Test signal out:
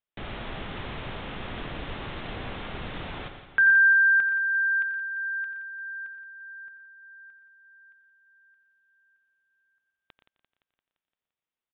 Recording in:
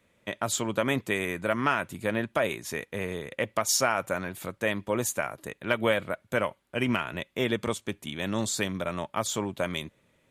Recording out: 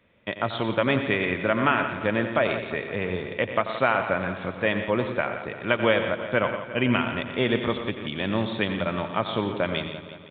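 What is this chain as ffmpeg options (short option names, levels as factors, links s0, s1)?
-filter_complex "[0:a]asplit=2[s0][s1];[s1]aecho=0:1:88|120:0.251|0.282[s2];[s0][s2]amix=inputs=2:normalize=0,aresample=8000,aresample=44100,asplit=2[s3][s4];[s4]aecho=0:1:172|344|516|688|860|1032|1204:0.251|0.151|0.0904|0.0543|0.0326|0.0195|0.0117[s5];[s3][s5]amix=inputs=2:normalize=0,volume=1.5"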